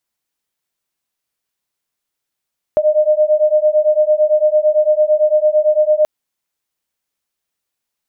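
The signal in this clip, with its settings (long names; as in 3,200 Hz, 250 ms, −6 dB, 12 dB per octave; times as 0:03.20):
two tones that beat 606 Hz, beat 8.9 Hz, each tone −13 dBFS 3.28 s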